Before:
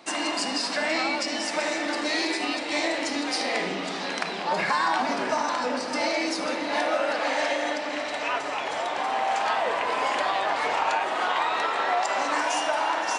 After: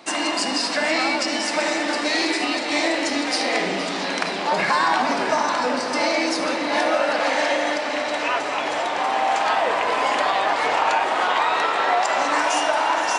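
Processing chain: echo with dull and thin repeats by turns 0.233 s, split 2200 Hz, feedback 86%, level -12 dB; gain +4.5 dB

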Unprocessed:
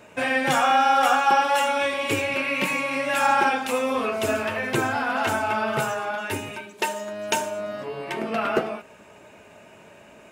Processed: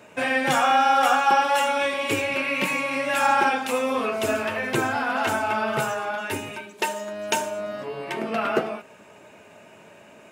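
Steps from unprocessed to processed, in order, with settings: HPF 98 Hz

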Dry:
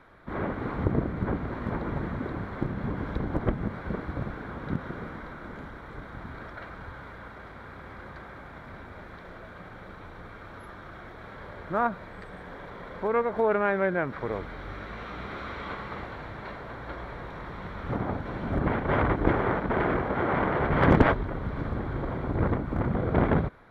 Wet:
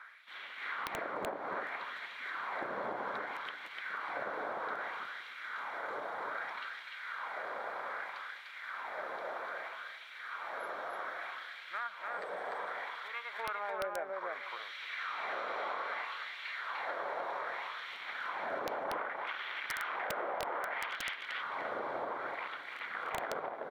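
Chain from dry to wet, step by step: LFO high-pass sine 0.63 Hz 550–3200 Hz; compressor 10:1, threshold -37 dBFS, peak gain reduction 20.5 dB; feedback echo 0.298 s, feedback 16%, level -3 dB; wrapped overs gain 26.5 dB; gain +1 dB

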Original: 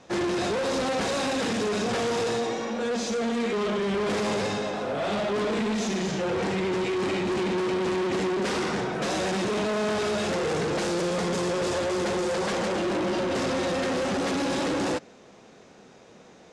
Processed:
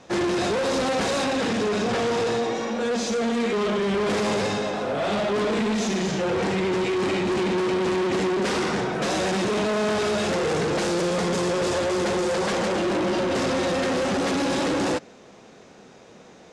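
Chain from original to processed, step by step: 1.24–2.55 high shelf 6700 Hz -8 dB; gain +3 dB

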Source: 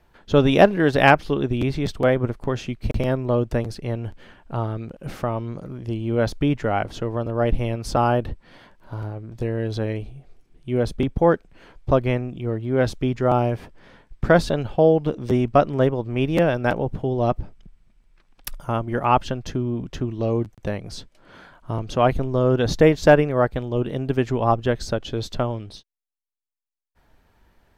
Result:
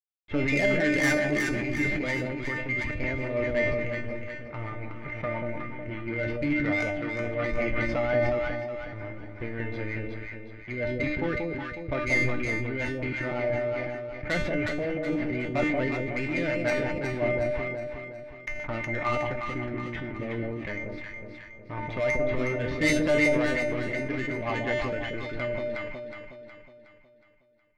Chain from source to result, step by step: bin magnitudes rounded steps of 15 dB; in parallel at +2 dB: compressor 6:1, threshold -26 dBFS, peak gain reduction 17 dB; on the sum: crossover distortion -32 dBFS; synth low-pass 2100 Hz, resonance Q 15; soft clip -10 dBFS, distortion -10 dB; rotary speaker horn 5.5 Hz; resonator 300 Hz, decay 0.39 s, harmonics all, mix 90%; on a send: echo with dull and thin repeats by turns 0.183 s, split 830 Hz, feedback 68%, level -2.5 dB; on the sum: sustainer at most 24 dB/s; gain +4.5 dB

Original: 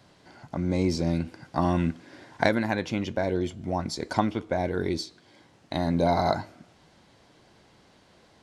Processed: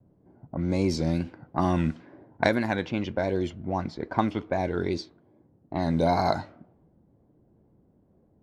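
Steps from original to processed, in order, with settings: low-pass opened by the level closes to 330 Hz, open at -21 dBFS; wow and flutter 69 cents

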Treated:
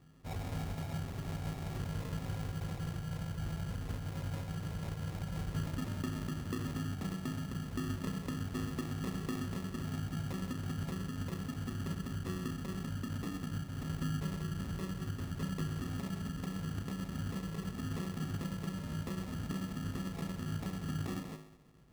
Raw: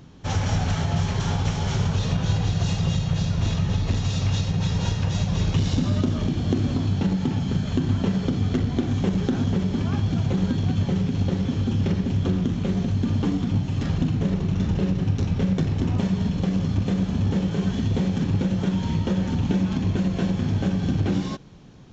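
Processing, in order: resonator 52 Hz, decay 0.91 s, harmonics odd, mix 80%; sample-and-hold 29×; gain -4.5 dB

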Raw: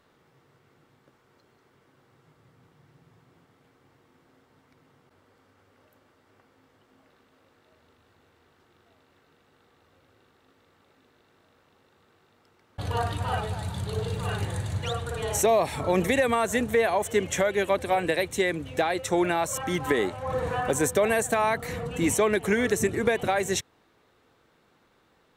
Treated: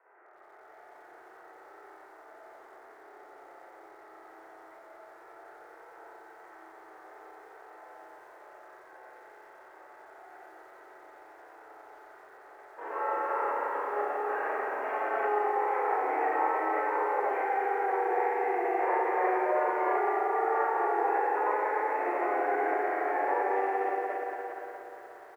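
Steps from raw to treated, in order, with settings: AGC gain up to 4 dB; soft clip -21.5 dBFS, distortion -8 dB; on a send: feedback echo 0.289 s, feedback 27%, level -12 dB; on the sum: compressor 10:1, threshold -30 dBFS, peak gain reduction 8.5 dB; mistuned SSB +390 Hz 290–2100 Hz; in parallel at +1 dB: limiter -33 dBFS, peak gain reduction 10.5 dB; on the sum: harmoniser -12 st -6 dB; spring tank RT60 3.3 s, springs 31/43 ms, chirp 80 ms, DRR -9 dB; formant shift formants -3 st; lo-fi delay 89 ms, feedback 80%, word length 8-bit, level -14 dB; gain -8.5 dB

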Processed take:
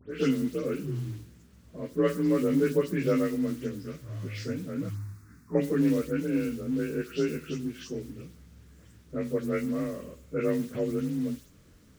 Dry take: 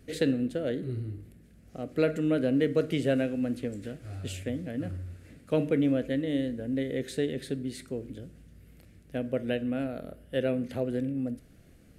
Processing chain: inharmonic rescaling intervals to 88%; companded quantiser 6-bit; 4.89–5.55 fixed phaser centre 1300 Hz, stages 4; dispersion highs, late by 0.115 s, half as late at 3000 Hz; gain +2 dB

